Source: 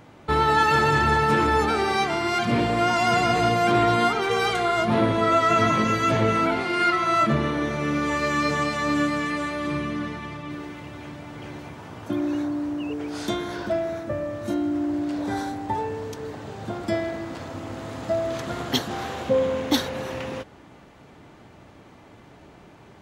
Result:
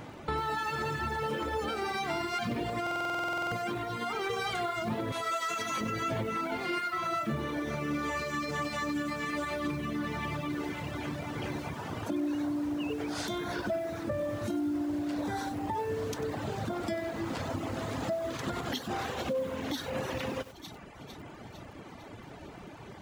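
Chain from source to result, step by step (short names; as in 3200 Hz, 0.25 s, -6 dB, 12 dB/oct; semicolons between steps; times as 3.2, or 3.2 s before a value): thin delay 0.453 s, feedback 54%, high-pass 2900 Hz, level -19.5 dB; compressor 5:1, threshold -32 dBFS, peak gain reduction 15 dB; 1.22–1.76 small resonant body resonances 520/3100 Hz, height 12 dB; 5.12–5.81 RIAA curve recording; limiter -27 dBFS, peak gain reduction 6.5 dB; reverb removal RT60 0.96 s; stuck buffer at 2.82, samples 2048, times 14; lo-fi delay 95 ms, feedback 35%, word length 8-bit, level -12.5 dB; gain +4.5 dB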